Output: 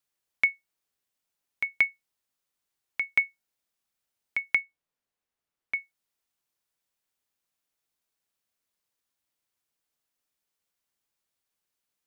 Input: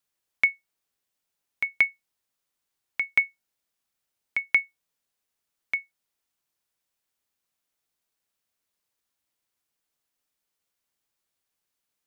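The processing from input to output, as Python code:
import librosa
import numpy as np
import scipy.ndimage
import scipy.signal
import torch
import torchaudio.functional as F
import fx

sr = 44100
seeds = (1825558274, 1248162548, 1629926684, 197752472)

y = fx.high_shelf(x, sr, hz=3400.0, db=-10.0, at=(4.55, 5.74))
y = F.gain(torch.from_numpy(y), -2.0).numpy()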